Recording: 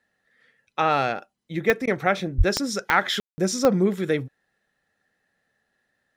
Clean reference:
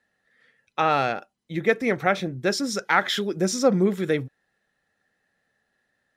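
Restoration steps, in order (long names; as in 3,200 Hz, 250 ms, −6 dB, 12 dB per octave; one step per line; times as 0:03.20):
click removal
high-pass at the plosives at 0:02.37
ambience match 0:03.20–0:03.38
repair the gap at 0:01.86, 12 ms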